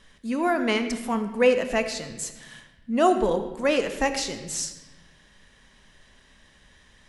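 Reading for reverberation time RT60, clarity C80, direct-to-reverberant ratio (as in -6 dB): 1.1 s, 10.5 dB, 8.0 dB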